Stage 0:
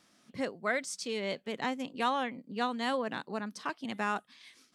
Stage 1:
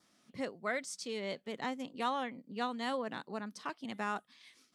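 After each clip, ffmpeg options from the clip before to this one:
-af "bandreject=f=1.6k:w=25,adynamicequalizer=threshold=0.00141:dfrequency=2600:dqfactor=4.5:tfrequency=2600:tqfactor=4.5:attack=5:release=100:ratio=0.375:range=2:mode=cutabove:tftype=bell,volume=-4dB"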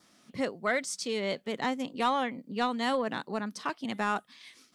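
-af "asoftclip=type=tanh:threshold=-22.5dB,volume=7.5dB"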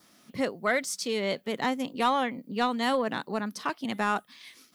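-af "aexciter=amount=3.6:drive=3.2:freq=11k,volume=2.5dB"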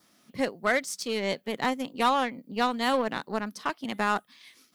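-af "aeval=exprs='0.2*(cos(1*acos(clip(val(0)/0.2,-1,1)))-cos(1*PI/2))+0.0126*(cos(7*acos(clip(val(0)/0.2,-1,1)))-cos(7*PI/2))':c=same,volume=1.5dB"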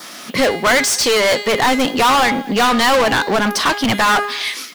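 -filter_complex "[0:a]bandreject=f=410.5:t=h:w=4,bandreject=f=821:t=h:w=4,bandreject=f=1.2315k:t=h:w=4,bandreject=f=1.642k:t=h:w=4,bandreject=f=2.0525k:t=h:w=4,bandreject=f=2.463k:t=h:w=4,bandreject=f=2.8735k:t=h:w=4,bandreject=f=3.284k:t=h:w=4,bandreject=f=3.6945k:t=h:w=4,bandreject=f=4.105k:t=h:w=4,bandreject=f=4.5155k:t=h:w=4,bandreject=f=4.926k:t=h:w=4,bandreject=f=5.3365k:t=h:w=4,bandreject=f=5.747k:t=h:w=4,bandreject=f=6.1575k:t=h:w=4,bandreject=f=6.568k:t=h:w=4,bandreject=f=6.9785k:t=h:w=4,bandreject=f=7.389k:t=h:w=4,bandreject=f=7.7995k:t=h:w=4,bandreject=f=8.21k:t=h:w=4,bandreject=f=8.6205k:t=h:w=4,bandreject=f=9.031k:t=h:w=4,bandreject=f=9.4415k:t=h:w=4,bandreject=f=9.852k:t=h:w=4,bandreject=f=10.2625k:t=h:w=4,bandreject=f=10.673k:t=h:w=4,bandreject=f=11.0835k:t=h:w=4,bandreject=f=11.494k:t=h:w=4,bandreject=f=11.9045k:t=h:w=4,bandreject=f=12.315k:t=h:w=4,bandreject=f=12.7255k:t=h:w=4,bandreject=f=13.136k:t=h:w=4,bandreject=f=13.5465k:t=h:w=4,asplit=2[a][b];[b]highpass=f=720:p=1,volume=33dB,asoftclip=type=tanh:threshold=-12.5dB[c];[a][c]amix=inputs=2:normalize=0,lowpass=f=7.3k:p=1,volume=-6dB,asplit=2[d][e];[e]adelay=230,highpass=300,lowpass=3.4k,asoftclip=type=hard:threshold=-21.5dB,volume=-19dB[f];[d][f]amix=inputs=2:normalize=0,volume=5.5dB"

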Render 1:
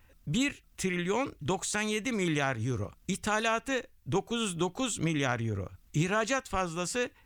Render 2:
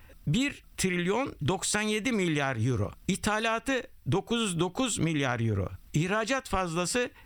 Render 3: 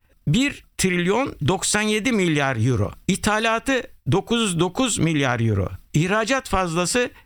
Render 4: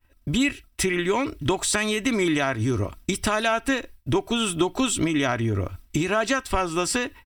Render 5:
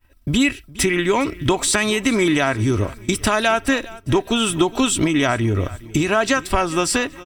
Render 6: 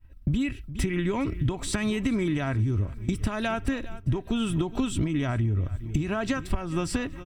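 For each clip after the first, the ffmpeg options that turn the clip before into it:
-af "bandreject=f=6.7k:w=5.2,acompressor=threshold=-32dB:ratio=6,volume=8dB"
-af "agate=range=-33dB:threshold=-41dB:ratio=3:detection=peak,volume=8dB"
-af "aecho=1:1:3.1:0.49,volume=-3.5dB"
-af "aecho=1:1:412|824|1236:0.1|0.041|0.0168,volume=5dB"
-af "bass=f=250:g=15,treble=f=4k:g=-6,acompressor=threshold=-15dB:ratio=6,volume=-8dB"

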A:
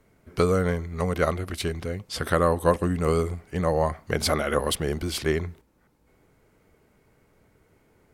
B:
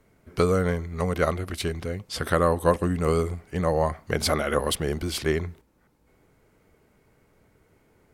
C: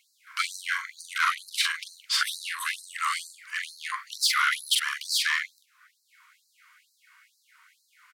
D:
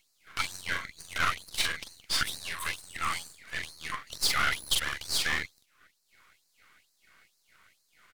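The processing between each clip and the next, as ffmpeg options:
-af anull
-filter_complex "[0:a]asplit=2[a][b];[b]adelay=43,volume=-6dB[c];[a][c]amix=inputs=2:normalize=0,asplit=2[d][e];[e]highpass=f=720:p=1,volume=24dB,asoftclip=type=tanh:threshold=-4.5dB[f];[d][f]amix=inputs=2:normalize=0,lowpass=f=3.7k:p=1,volume=-6dB,afftfilt=real='re*gte(b*sr/1024,910*pow(4000/910,0.5+0.5*sin(2*PI*2.2*pts/sr)))':imag='im*gte(b*sr/1024,910*pow(4000/910,0.5+0.5*sin(2*PI*2.2*pts/sr)))':win_size=1024:overlap=0.75,volume=-4dB"
-af "aeval=exprs='if(lt(val(0),0),0.251*val(0),val(0))':c=same"

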